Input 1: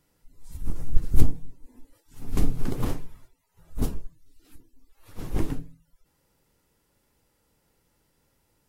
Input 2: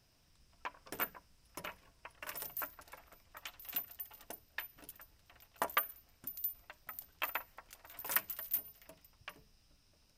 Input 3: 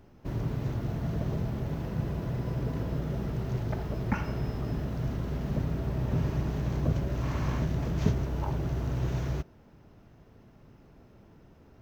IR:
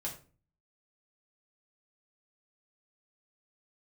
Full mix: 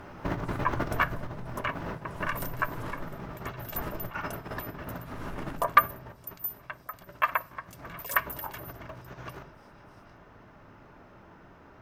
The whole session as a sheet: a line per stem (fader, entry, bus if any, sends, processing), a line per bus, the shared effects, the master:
−9.5 dB, 0.00 s, send −5.5 dB, brickwall limiter −27.5 dBFS, peak gain reduction 25.5 dB
+0.5 dB, 0.00 s, send −17 dB, comb filter 1.8 ms, depth 65%; phaser with staggered stages 3.2 Hz
0:00.81 −2 dB → 0:01.60 −9.5 dB → 0:06.07 −9.5 dB → 0:06.35 −18.5 dB → 0:07.39 −18.5 dB → 0:07.90 −10 dB, 0.00 s, send −6 dB, compressor whose output falls as the input rises −35 dBFS, ratio −0.5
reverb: on, RT60 0.40 s, pre-delay 3 ms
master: asymmetric clip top −24.5 dBFS; parametric band 1,300 Hz +14.5 dB 2.3 octaves

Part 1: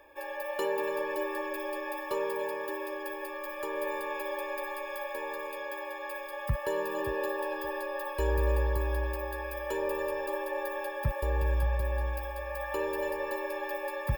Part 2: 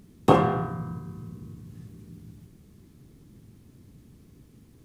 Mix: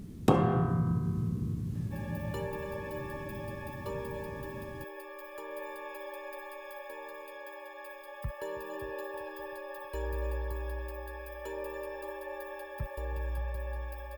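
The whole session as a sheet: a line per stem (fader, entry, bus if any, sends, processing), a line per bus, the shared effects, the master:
−7.5 dB, 1.75 s, no send, echo send −20 dB, no processing
+2.5 dB, 0.00 s, no send, no echo send, low-shelf EQ 340 Hz +7.5 dB; downward compressor 2.5 to 1, threshold −29 dBFS, peak gain reduction 14 dB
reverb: not used
echo: repeating echo 319 ms, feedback 60%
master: no processing

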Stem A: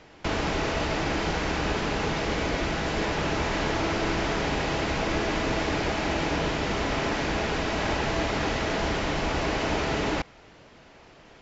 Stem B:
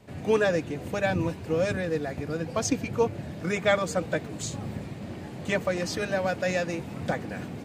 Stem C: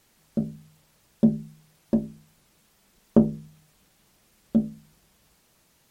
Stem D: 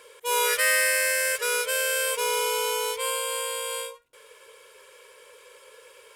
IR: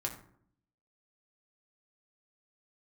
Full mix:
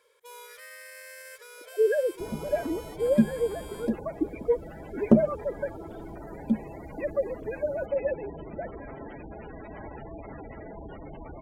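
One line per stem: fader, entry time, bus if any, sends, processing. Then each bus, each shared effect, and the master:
−12.5 dB, 1.95 s, no send, gate on every frequency bin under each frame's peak −10 dB strong
−5.5 dB, 1.50 s, no send, three sine waves on the formant tracks; gate on every frequency bin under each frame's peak −15 dB strong; spectral tilt −3.5 dB per octave
+1.0 dB, 1.95 s, no send, spectral dynamics exaggerated over time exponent 2
−15.0 dB, 0.00 s, no send, parametric band 8,500 Hz −4.5 dB 0.61 octaves; notch filter 2,800 Hz, Q 6.4; brickwall limiter −21.5 dBFS, peak gain reduction 10.5 dB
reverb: not used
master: no processing

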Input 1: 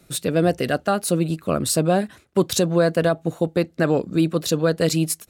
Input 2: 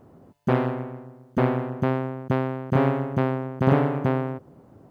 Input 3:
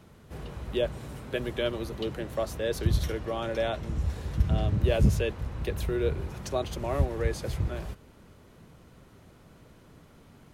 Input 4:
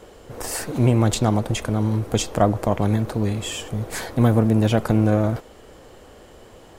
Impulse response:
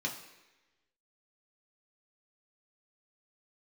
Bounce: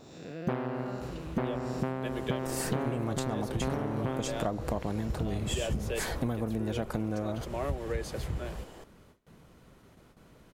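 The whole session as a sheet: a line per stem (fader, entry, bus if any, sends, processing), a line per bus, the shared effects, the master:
−11.5 dB, 0.00 s, no send, spectrum smeared in time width 270 ms; Chebyshev low-pass with heavy ripple 7,500 Hz, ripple 6 dB
+0.5 dB, 0.00 s, no send, no processing
−2.0 dB, 0.70 s, no send, noise gate with hold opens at −45 dBFS
−3.0 dB, 2.05 s, no send, no processing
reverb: not used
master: parametric band 95 Hz −4.5 dB 0.82 octaves; downward compressor 12 to 1, threshold −27 dBFS, peak gain reduction 14.5 dB

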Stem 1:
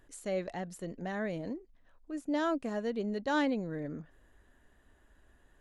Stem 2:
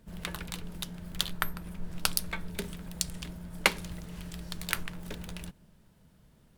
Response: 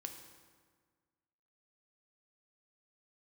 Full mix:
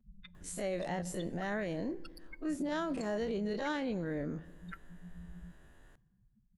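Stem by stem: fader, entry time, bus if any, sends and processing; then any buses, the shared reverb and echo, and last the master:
−1.5 dB, 0.35 s, send −8.5 dB, every bin's largest magnitude spread in time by 60 ms; brickwall limiter −25.5 dBFS, peak gain reduction 7.5 dB
−4.5 dB, 0.00 s, send −14 dB, expanding power law on the bin magnitudes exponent 4; downward compressor, threshold −39 dBFS, peak gain reduction 18.5 dB; barber-pole flanger 5 ms −0.51 Hz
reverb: on, RT60 1.6 s, pre-delay 3 ms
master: brickwall limiter −28 dBFS, peak gain reduction 5.5 dB

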